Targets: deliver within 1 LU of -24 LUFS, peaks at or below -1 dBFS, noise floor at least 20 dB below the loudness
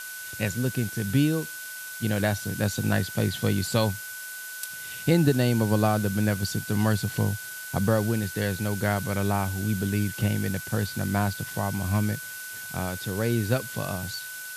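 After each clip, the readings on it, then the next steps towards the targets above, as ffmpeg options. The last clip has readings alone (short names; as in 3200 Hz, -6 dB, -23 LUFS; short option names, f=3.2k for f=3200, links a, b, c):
steady tone 1500 Hz; tone level -38 dBFS; noise floor -38 dBFS; noise floor target -47 dBFS; loudness -27.0 LUFS; peak -9.0 dBFS; loudness target -24.0 LUFS
-> -af "bandreject=f=1.5k:w=30"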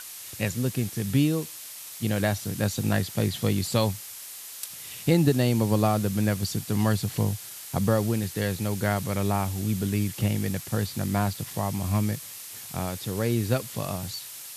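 steady tone none; noise floor -41 dBFS; noise floor target -47 dBFS
-> -af "afftdn=nr=6:nf=-41"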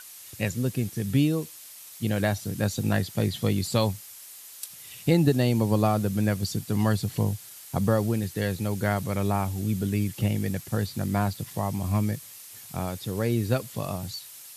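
noise floor -46 dBFS; noise floor target -47 dBFS
-> -af "afftdn=nr=6:nf=-46"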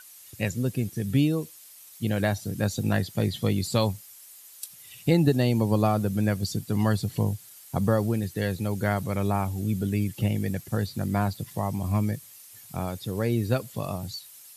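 noise floor -49 dBFS; loudness -27.0 LUFS; peak -9.0 dBFS; loudness target -24.0 LUFS
-> -af "volume=3dB"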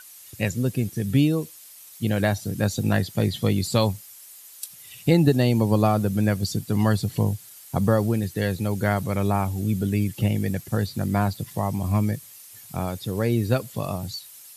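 loudness -24.0 LUFS; peak -6.0 dBFS; noise floor -46 dBFS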